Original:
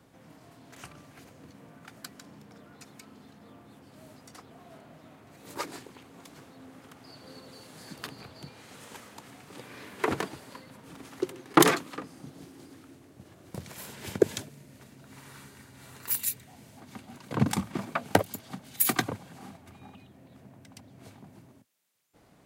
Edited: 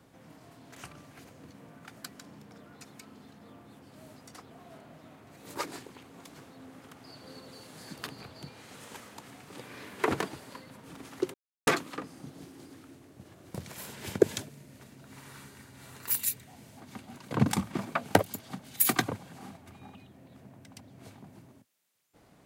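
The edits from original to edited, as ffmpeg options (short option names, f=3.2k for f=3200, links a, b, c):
-filter_complex "[0:a]asplit=3[a][b][c];[a]atrim=end=11.34,asetpts=PTS-STARTPTS,afade=t=out:st=11.336:d=0.004:c=hsin[d];[b]atrim=start=11.34:end=11.67,asetpts=PTS-STARTPTS,volume=0[e];[c]atrim=start=11.67,asetpts=PTS-STARTPTS,afade=t=in:d=0.004:c=hsin[f];[d][e][f]concat=n=3:v=0:a=1"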